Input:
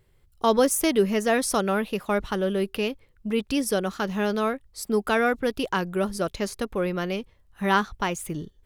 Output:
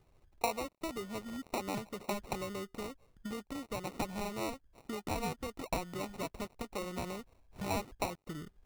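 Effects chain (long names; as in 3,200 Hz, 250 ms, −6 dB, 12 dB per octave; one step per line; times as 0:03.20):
gap after every zero crossing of 0.095 ms
time-frequency box erased 0:01.22–0:01.52, 390–3,200 Hz
downward compressor 6 to 1, threshold −35 dBFS, peak gain reduction 18 dB
flat-topped bell 1,100 Hz +9 dB
decimation without filtering 27×
level −4.5 dB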